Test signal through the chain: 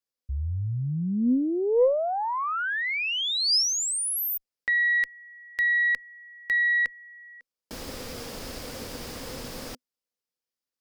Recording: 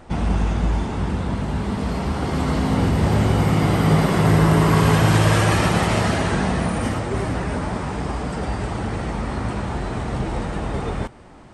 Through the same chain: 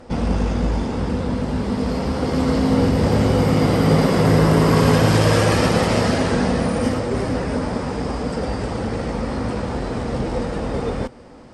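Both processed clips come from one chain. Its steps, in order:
thirty-one-band graphic EQ 250 Hz +8 dB, 500 Hz +11 dB, 5,000 Hz +8 dB
harmonic generator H 2 −19 dB, 4 −21 dB, 6 −24 dB, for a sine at −1.5 dBFS
level −1 dB

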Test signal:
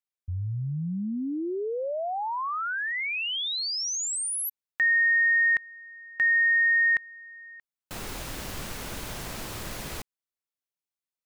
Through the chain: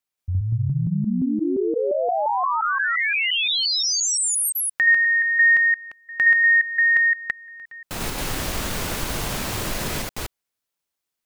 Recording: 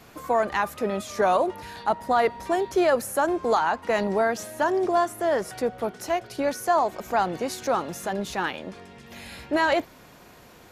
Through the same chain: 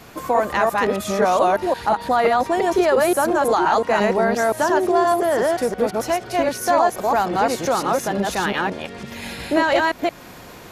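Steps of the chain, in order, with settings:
delay that plays each chunk backwards 174 ms, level 0 dB
in parallel at +2 dB: downward compressor, threshold −28 dBFS

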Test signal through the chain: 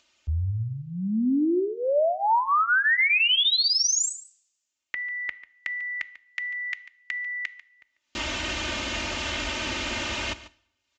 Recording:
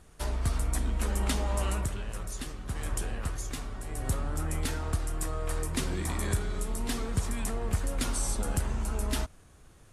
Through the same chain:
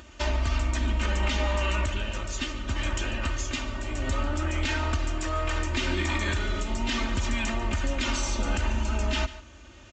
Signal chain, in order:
high-pass filter 43 Hz 24 dB per octave
parametric band 2,800 Hz +8 dB 0.71 octaves
comb filter 3.3 ms, depth 87%
dynamic equaliser 1,900 Hz, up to +5 dB, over −39 dBFS, Q 0.71
in parallel at −1 dB: downward compressor, threshold −33 dBFS
on the sum: brickwall limiter −17 dBFS
upward compression, threshold −46 dBFS
on a send: single-tap delay 144 ms −16.5 dB
on the sum: coupled-rooms reverb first 0.62 s, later 1.7 s, from −26 dB, DRR 17 dB
downsampling to 16,000 Hz

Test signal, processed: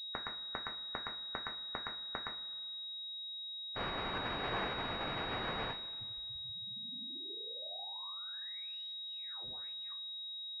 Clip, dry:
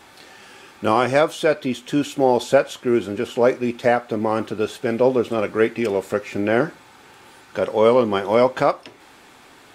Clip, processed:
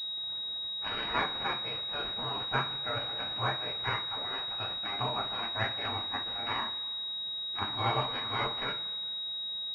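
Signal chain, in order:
gate on every frequency bin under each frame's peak −20 dB weak
coupled-rooms reverb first 0.25 s, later 1.7 s, from −18 dB, DRR 0.5 dB
switching amplifier with a slow clock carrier 3,800 Hz

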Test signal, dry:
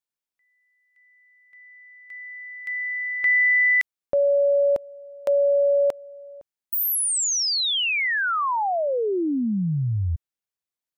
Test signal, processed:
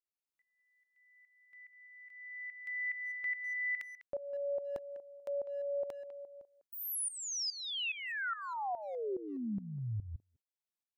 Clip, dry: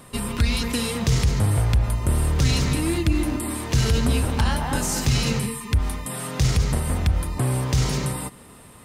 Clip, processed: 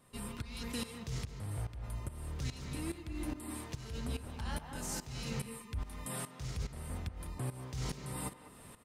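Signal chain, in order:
reversed playback
downward compressor 10 to 1, threshold −28 dBFS
reversed playback
shaped tremolo saw up 2.4 Hz, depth 85%
far-end echo of a speakerphone 200 ms, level −12 dB
level −5 dB

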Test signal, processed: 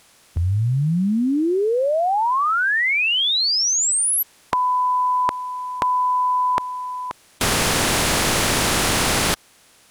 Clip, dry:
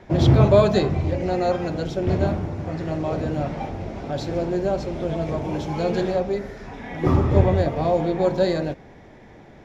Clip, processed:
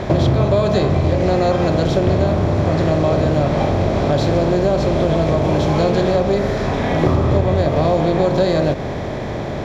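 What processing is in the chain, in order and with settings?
compressor on every frequency bin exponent 0.6
downward compressor, threshold −19 dBFS
level +7 dB

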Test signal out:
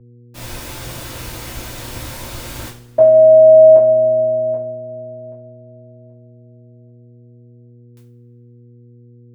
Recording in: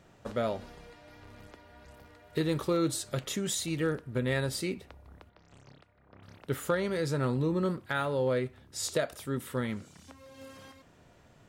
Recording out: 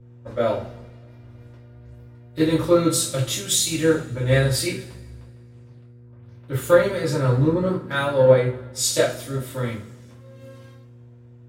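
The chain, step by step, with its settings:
coupled-rooms reverb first 0.35 s, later 3 s, from −21 dB, DRR −7 dB
hum with harmonics 120 Hz, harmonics 4, −37 dBFS −7 dB per octave
multiband upward and downward expander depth 70%

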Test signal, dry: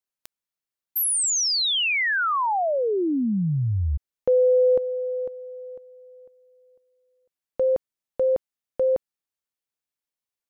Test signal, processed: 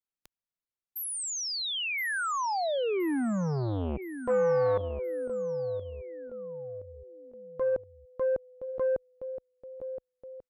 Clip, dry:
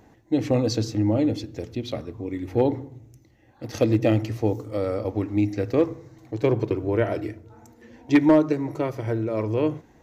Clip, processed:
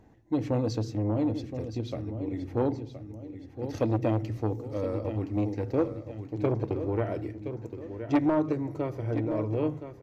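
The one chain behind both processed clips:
spectral tilt −1.5 dB per octave
repeating echo 1,020 ms, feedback 43%, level −11 dB
saturating transformer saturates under 460 Hz
level −7 dB

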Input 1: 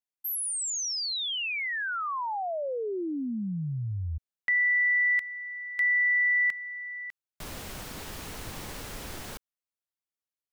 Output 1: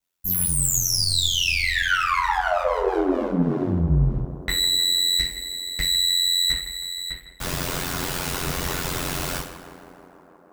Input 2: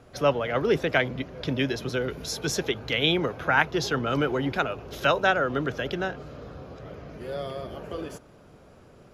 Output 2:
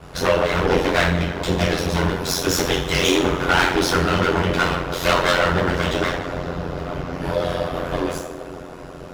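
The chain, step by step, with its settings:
lower of the sound and its delayed copy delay 8.9 ms
in parallel at +1 dB: downward compressor, threshold −38 dBFS
on the sum: coupled-rooms reverb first 0.43 s, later 1.7 s, from −18 dB, DRR −5.5 dB
soft clipping −14 dBFS
on a send: tape delay 159 ms, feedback 89%, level −12 dB, low-pass 2,200 Hz
on the sum: ring modulation 44 Hz
level +5 dB

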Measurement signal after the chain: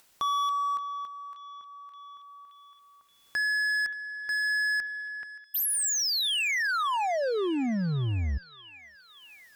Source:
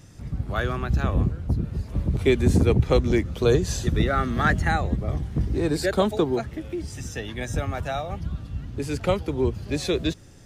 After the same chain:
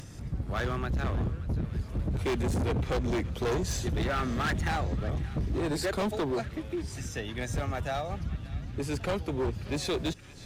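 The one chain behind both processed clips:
harmonic generator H 2 −29 dB, 4 −28 dB, 5 −39 dB, 6 −38 dB, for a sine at −7.5 dBFS
gain into a clipping stage and back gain 22.5 dB
upward compression, threshold −34 dBFS
feedback echo with a band-pass in the loop 575 ms, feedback 79%, band-pass 2,600 Hz, level −15.5 dB
level −3.5 dB

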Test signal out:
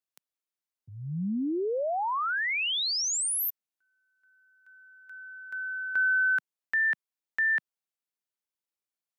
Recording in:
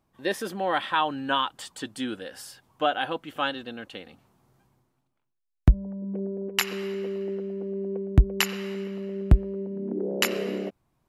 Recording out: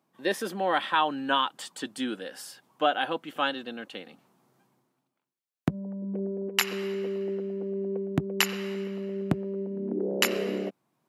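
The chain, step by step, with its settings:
high-pass filter 160 Hz 24 dB per octave

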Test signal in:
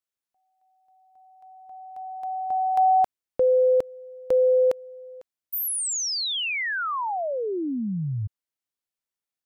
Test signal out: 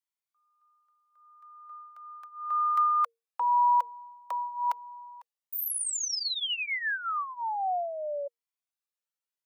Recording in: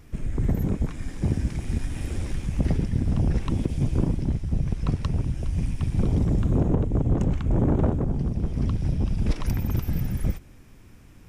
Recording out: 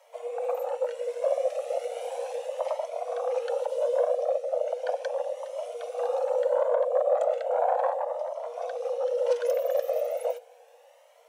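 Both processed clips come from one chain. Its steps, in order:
frequency shifter +460 Hz
flanger whose copies keep moving one way rising 0.36 Hz

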